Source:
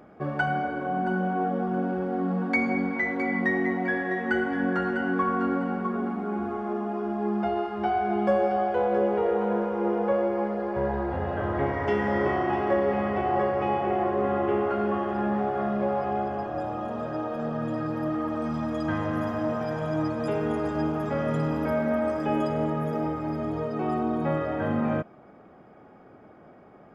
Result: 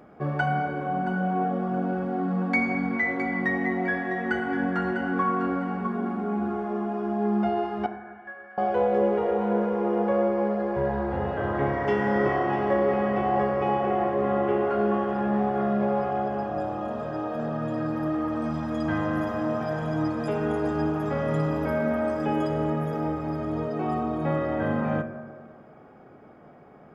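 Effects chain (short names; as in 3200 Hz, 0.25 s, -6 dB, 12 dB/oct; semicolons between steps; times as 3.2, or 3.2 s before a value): 7.86–8.58 band-pass 1700 Hz, Q 9.4; reverb RT60 1.8 s, pre-delay 3 ms, DRR 7.5 dB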